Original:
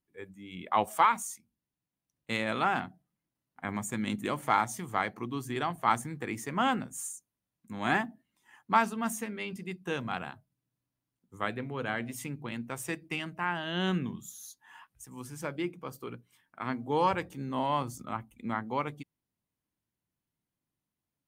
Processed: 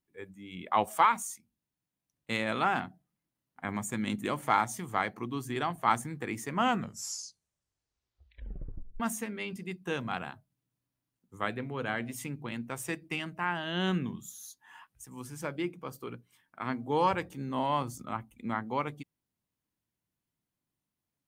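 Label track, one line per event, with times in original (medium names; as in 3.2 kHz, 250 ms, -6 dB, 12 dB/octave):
6.550000	6.550000	tape stop 2.45 s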